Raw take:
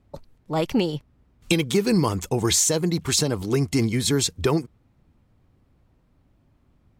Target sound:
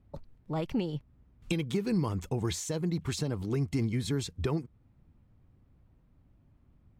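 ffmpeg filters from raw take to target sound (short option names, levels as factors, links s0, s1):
-af "acompressor=threshold=0.0251:ratio=1.5,bass=f=250:g=6,treble=f=4000:g=-7,volume=0.473"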